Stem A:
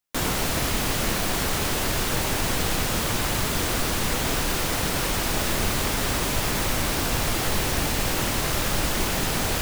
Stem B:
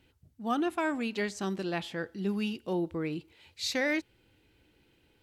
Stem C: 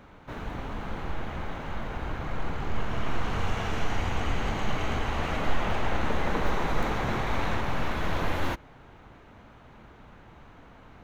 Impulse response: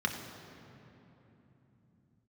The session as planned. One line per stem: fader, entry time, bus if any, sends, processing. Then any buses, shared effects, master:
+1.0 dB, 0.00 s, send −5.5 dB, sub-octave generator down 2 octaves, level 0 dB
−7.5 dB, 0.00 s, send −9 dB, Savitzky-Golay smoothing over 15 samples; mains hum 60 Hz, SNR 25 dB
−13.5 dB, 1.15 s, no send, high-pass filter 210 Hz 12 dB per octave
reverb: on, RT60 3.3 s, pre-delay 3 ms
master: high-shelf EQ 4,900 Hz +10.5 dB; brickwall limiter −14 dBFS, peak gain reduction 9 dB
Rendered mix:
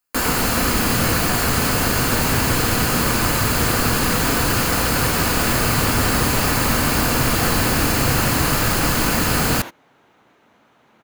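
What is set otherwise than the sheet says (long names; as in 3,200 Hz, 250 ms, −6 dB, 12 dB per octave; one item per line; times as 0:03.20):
stem B: muted
stem C −13.5 dB → −3.5 dB
master: missing brickwall limiter −14 dBFS, peak gain reduction 9 dB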